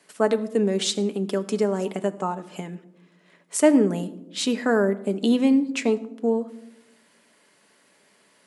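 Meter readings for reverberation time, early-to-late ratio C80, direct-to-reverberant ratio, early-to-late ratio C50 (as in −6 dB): 0.90 s, 18.5 dB, 8.5 dB, 16.5 dB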